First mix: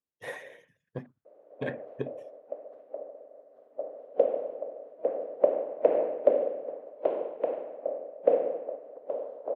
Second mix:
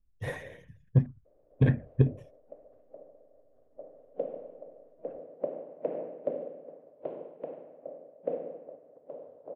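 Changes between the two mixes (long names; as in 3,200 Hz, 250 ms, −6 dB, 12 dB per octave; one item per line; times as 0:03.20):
background −12.0 dB
master: remove high-pass filter 430 Hz 12 dB per octave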